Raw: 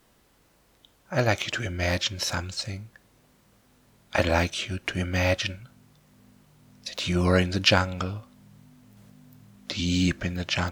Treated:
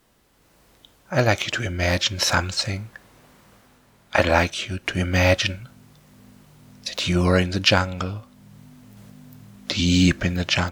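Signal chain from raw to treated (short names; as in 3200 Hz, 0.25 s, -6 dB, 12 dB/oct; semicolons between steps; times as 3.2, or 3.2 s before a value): 2.18–4.52 bell 1200 Hz +5 dB 2.6 oct; AGC gain up to 7 dB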